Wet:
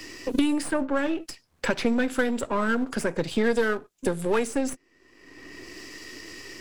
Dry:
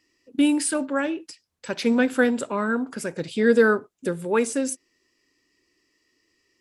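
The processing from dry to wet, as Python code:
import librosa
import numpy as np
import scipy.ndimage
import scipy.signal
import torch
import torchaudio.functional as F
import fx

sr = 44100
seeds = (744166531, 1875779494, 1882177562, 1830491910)

y = np.where(x < 0.0, 10.0 ** (-7.0 / 20.0) * x, x)
y = fx.band_squash(y, sr, depth_pct=100)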